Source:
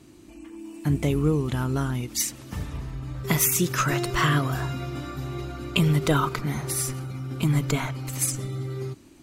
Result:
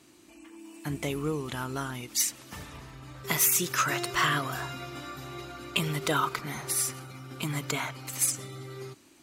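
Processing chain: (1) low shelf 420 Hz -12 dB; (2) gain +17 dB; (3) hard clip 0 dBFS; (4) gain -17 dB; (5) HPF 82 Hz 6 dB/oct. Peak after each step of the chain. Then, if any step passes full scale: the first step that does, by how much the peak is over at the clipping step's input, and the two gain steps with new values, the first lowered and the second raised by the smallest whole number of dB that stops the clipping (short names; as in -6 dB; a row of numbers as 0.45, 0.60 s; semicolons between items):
-8.0, +9.0, 0.0, -17.0, -16.0 dBFS; step 2, 9.0 dB; step 2 +8 dB, step 4 -8 dB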